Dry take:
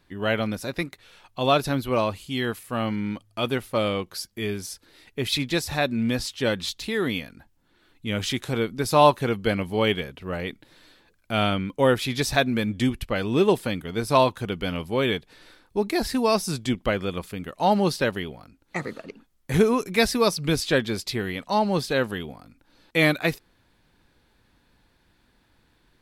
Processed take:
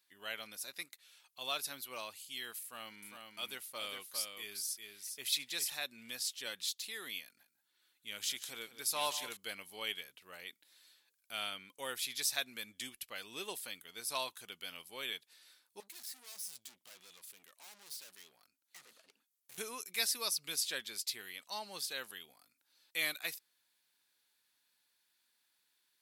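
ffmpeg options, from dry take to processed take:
-filter_complex "[0:a]asettb=1/sr,asplit=3[s0][s1][s2];[s0]atrim=end=2.624[s3];[s1]atrim=start=2.62:end=5.7,asetpts=PTS-STARTPTS,afade=t=in:d=0.004:c=qsin,afade=t=out:st=3.076:d=0.004:c=qsin,aecho=1:1:404:0.562,atrim=end_sample=135828[s4];[s2]atrim=start=5.696[s5];[s3][s4]acrossfade=d=0.004:c1=hsin:c2=qsin[s6];[s6][s5]acrossfade=d=0.004:c1=qsin:c2=hsin,asettb=1/sr,asplit=3[s7][s8][s9];[s7]atrim=end=7.234[s10];[s8]atrim=start=7.23:end=9.37,asetpts=PTS-STARTPTS,afade=t=in:d=0.004:c=qsin,afade=t=out:st=2.136:d=0.004:c=qsin,aecho=1:1:146|181|882:0.106|0.188|0.668,atrim=end_sample=94374[s11];[s9]atrim=start=9.366[s12];[s10][s11]acrossfade=d=0.004:c1=hsin:c2=qsin[s13];[s13][s12]acrossfade=d=0.004:c1=qsin:c2=hsin,asettb=1/sr,asplit=3[s14][s15][s16];[s14]atrim=end=15.804[s17];[s15]atrim=start=15.8:end=19.58,asetpts=PTS-STARTPTS,afade=t=in:d=0.004:c=qsin,afade=t=out:st=3.776:d=0.004:c=qsin,aeval=exprs='(tanh(79.4*val(0)+0.6)-tanh(0.6))/79.4':c=same[s18];[s16]atrim=start=19.576[s19];[s17][s18]acrossfade=d=0.004:c1=hsin:c2=qsin[s20];[s20][s19]acrossfade=d=0.004:c1=qsin:c2=hsin,aderivative,volume=0.708"

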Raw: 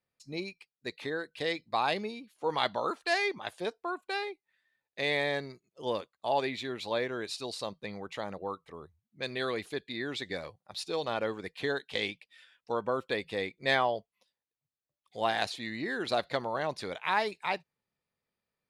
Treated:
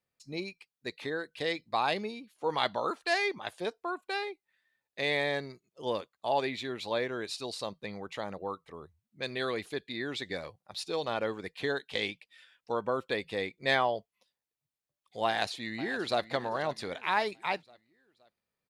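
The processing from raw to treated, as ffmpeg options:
-filter_complex "[0:a]asplit=2[s0][s1];[s1]afade=t=in:st=15.26:d=0.01,afade=t=out:st=16.3:d=0.01,aecho=0:1:520|1040|1560|2080:0.177828|0.0800226|0.0360102|0.0162046[s2];[s0][s2]amix=inputs=2:normalize=0"

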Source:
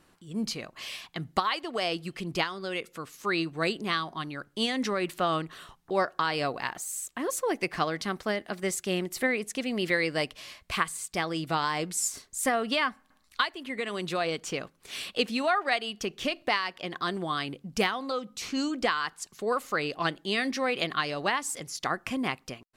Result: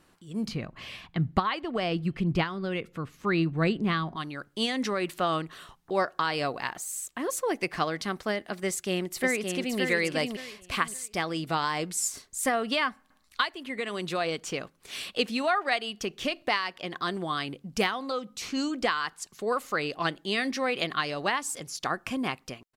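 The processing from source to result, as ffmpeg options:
-filter_complex "[0:a]asettb=1/sr,asplit=3[s0][s1][s2];[s0]atrim=end=0.484[s3];[s1]atrim=start=0.48:end=4.16,asetpts=PTS-STARTPTS,afade=t=in:d=0.004:c=qsin,afade=t=out:st=3.676:d=0.004:c=qsin,bass=f=250:g=13,treble=f=4000:g=-12[s4];[s2]atrim=start=4.156[s5];[s3][s4]acrossfade=d=0.004:c1=hsin:c2=qsin[s6];[s6][s5]acrossfade=d=0.004:c1=qsin:c2=hsin,asplit=2[s7][s8];[s8]afade=t=in:st=8.66:d=0.01,afade=t=out:st=9.79:d=0.01,aecho=0:1:570|1140|1710:0.595662|0.148916|0.0372289[s9];[s7][s9]amix=inputs=2:normalize=0,asettb=1/sr,asplit=3[s10][s11][s12];[s10]atrim=end=21.404[s13];[s11]atrim=start=21.4:end=22.33,asetpts=PTS-STARTPTS,afade=t=in:d=0.004:c=qsin,afade=t=out:st=0.926:d=0.004:c=qsin,bandreject=f=2000:w=12[s14];[s12]atrim=start=22.326[s15];[s13][s14]acrossfade=d=0.004:c1=hsin:c2=qsin[s16];[s16][s15]acrossfade=d=0.004:c1=qsin:c2=hsin"

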